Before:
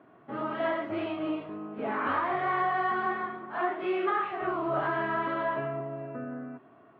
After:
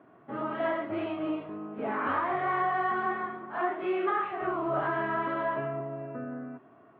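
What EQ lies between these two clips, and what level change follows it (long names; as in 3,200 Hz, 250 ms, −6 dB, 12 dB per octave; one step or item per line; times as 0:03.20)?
Bessel low-pass filter 3,000 Hz, order 2
0.0 dB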